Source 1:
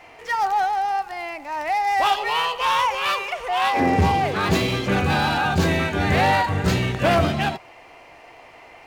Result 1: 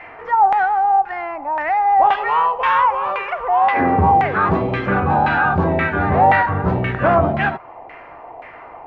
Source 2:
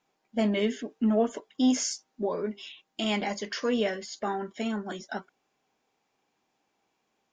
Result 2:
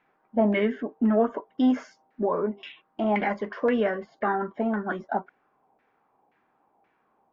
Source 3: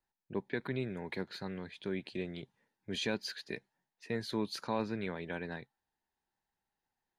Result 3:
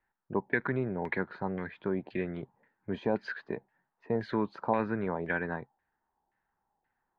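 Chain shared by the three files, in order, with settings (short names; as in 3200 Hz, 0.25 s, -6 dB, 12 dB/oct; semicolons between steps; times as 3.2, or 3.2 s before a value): in parallel at -1 dB: compressor, threshold -33 dBFS; on the sum: LFO low-pass saw down 1.9 Hz 740–2000 Hz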